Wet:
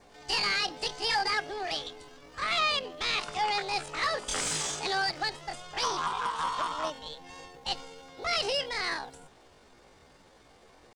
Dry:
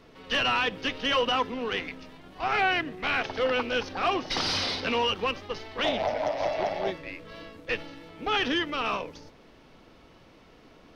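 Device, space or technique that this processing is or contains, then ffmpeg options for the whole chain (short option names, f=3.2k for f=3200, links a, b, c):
chipmunk voice: -af "adynamicequalizer=threshold=0.00562:dfrequency=1900:dqfactor=3.8:tfrequency=1900:tqfactor=3.8:attack=5:release=100:ratio=0.375:range=1.5:mode=boostabove:tftype=bell,asetrate=72056,aresample=44100,atempo=0.612027,volume=-3dB"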